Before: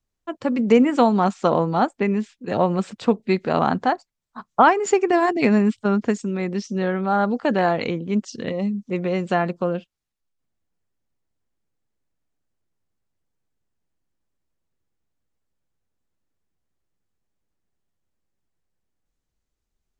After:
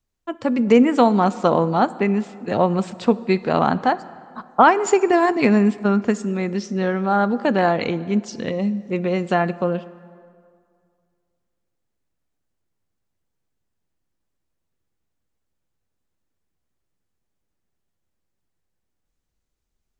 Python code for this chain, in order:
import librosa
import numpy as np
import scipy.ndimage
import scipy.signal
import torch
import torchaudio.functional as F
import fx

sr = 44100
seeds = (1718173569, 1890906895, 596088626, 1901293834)

y = fx.rev_plate(x, sr, seeds[0], rt60_s=2.2, hf_ratio=0.65, predelay_ms=0, drr_db=16.0)
y = y * librosa.db_to_amplitude(1.5)